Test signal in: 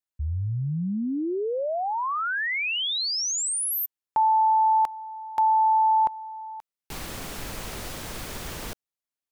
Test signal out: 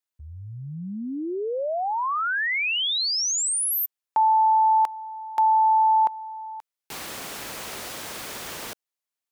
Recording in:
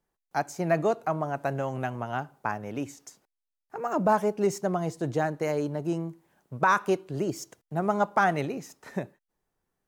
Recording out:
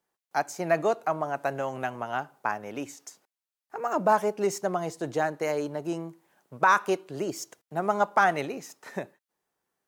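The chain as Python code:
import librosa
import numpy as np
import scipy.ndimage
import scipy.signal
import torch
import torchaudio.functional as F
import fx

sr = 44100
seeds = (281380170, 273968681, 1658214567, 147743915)

y = fx.highpass(x, sr, hz=440.0, slope=6)
y = y * 10.0 ** (2.5 / 20.0)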